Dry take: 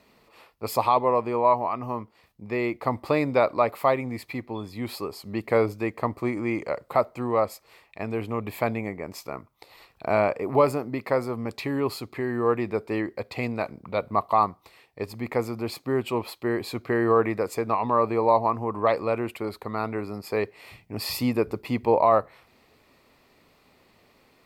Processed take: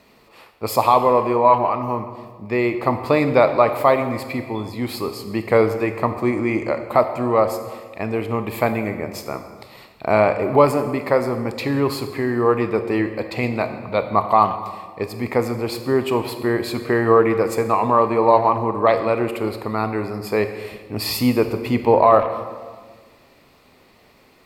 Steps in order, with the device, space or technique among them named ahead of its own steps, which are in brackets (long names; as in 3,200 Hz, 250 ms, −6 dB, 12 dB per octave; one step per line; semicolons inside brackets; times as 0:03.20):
saturated reverb return (on a send at −7.5 dB: convolution reverb RT60 1.5 s, pre-delay 22 ms + soft clipping −13.5 dBFS, distortion −20 dB)
on the sum: level +6 dB